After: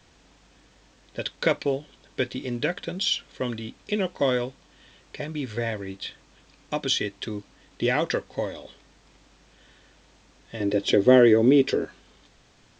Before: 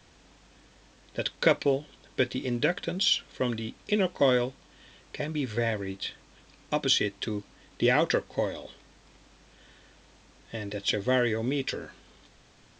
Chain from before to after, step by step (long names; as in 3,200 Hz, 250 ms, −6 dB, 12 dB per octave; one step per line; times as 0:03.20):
0:10.60–0:11.85: parametric band 350 Hz +14 dB 1.7 octaves